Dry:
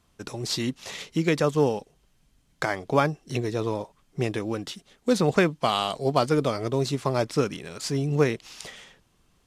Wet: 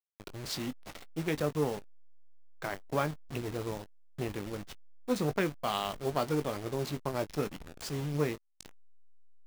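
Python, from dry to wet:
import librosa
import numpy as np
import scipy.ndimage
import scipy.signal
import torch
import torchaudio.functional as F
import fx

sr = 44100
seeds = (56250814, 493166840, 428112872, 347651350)

y = fx.delta_hold(x, sr, step_db=-28.5)
y = fx.doubler(y, sr, ms=20.0, db=-11.0)
y = fx.transformer_sat(y, sr, knee_hz=460.0)
y = y * librosa.db_to_amplitude(-8.0)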